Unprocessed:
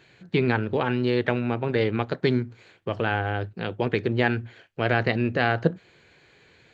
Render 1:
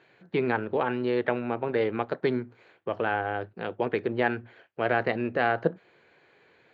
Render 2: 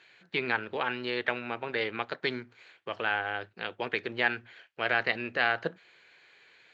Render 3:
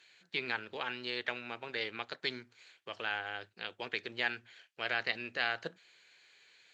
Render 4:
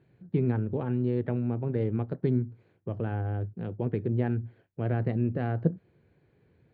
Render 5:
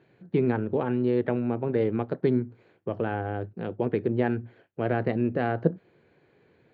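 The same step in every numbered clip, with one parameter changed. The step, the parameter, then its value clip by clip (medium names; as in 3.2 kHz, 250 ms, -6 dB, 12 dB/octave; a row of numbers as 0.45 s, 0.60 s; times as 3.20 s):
band-pass filter, frequency: 760 Hz, 2.3 kHz, 6.2 kHz, 110 Hz, 290 Hz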